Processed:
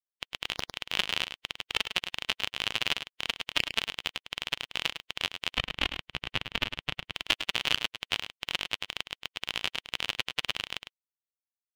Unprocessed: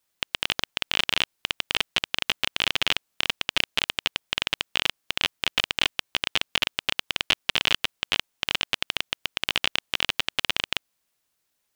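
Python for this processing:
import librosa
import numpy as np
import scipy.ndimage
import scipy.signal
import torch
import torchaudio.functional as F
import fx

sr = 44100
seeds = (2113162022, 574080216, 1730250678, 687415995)

p1 = fx.bin_expand(x, sr, power=2.0)
p2 = fx.bass_treble(p1, sr, bass_db=10, treble_db=-9, at=(5.51, 7.14))
y = p2 + fx.echo_single(p2, sr, ms=104, db=-9.5, dry=0)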